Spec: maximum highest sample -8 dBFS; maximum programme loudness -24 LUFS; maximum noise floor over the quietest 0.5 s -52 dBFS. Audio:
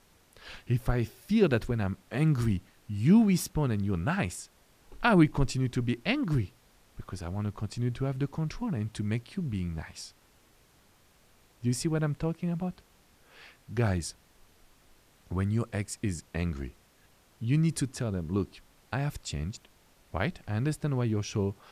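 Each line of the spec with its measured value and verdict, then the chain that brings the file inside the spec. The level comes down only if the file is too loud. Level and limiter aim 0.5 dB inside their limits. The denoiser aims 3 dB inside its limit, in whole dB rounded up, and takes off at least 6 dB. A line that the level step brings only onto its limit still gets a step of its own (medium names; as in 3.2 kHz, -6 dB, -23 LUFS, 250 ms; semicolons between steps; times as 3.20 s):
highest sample -10.0 dBFS: pass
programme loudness -30.5 LUFS: pass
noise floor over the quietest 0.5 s -62 dBFS: pass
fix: none needed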